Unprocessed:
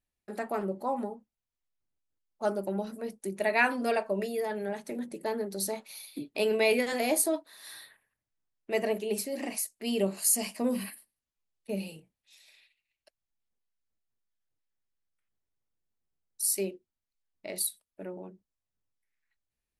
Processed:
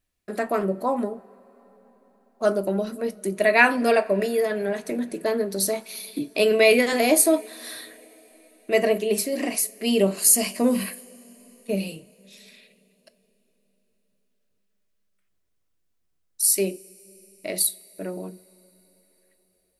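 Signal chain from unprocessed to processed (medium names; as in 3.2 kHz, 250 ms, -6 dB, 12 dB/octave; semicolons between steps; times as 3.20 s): Butterworth band-stop 850 Hz, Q 8; two-slope reverb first 0.29 s, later 4.8 s, from -20 dB, DRR 14.5 dB; trim +8.5 dB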